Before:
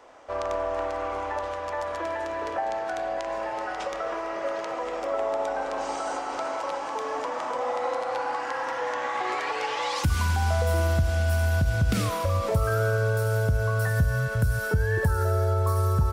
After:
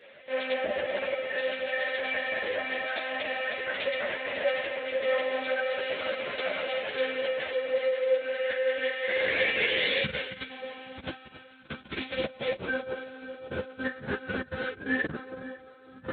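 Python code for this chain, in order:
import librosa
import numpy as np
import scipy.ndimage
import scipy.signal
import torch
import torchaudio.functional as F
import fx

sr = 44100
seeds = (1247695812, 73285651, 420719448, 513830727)

y = scipy.signal.sosfilt(scipy.signal.cheby1(2, 1.0, [510.0, 1900.0], 'bandstop', fs=sr, output='sos'), x)
y = fx.peak_eq(y, sr, hz=270.0, db=-9.0, octaves=0.85)
y = fx.lpc_monotone(y, sr, seeds[0], pitch_hz=260.0, order=10)
y = fx.doubler(y, sr, ms=44.0, db=-13.5)
y = fx.echo_alternate(y, sr, ms=274, hz=1100.0, feedback_pct=72, wet_db=-6.5)
y = fx.over_compress(y, sr, threshold_db=-25.0, ratio=-0.5)
y = scipy.signal.sosfilt(scipy.signal.butter(2, 130.0, 'highpass', fs=sr, output='sos'), y)
y = fx.low_shelf(y, sr, hz=390.0, db=-11.5)
y = fx.ensemble(y, sr)
y = y * librosa.db_to_amplitude(8.5)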